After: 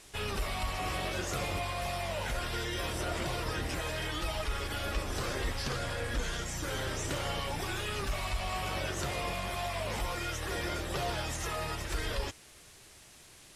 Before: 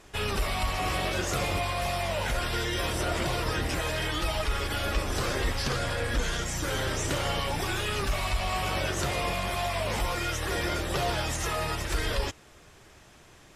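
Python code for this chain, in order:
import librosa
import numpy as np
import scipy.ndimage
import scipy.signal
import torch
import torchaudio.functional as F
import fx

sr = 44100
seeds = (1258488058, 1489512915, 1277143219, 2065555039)

y = fx.dmg_noise_band(x, sr, seeds[0], low_hz=1700.0, high_hz=11000.0, level_db=-52.0)
y = F.gain(torch.from_numpy(y), -5.5).numpy()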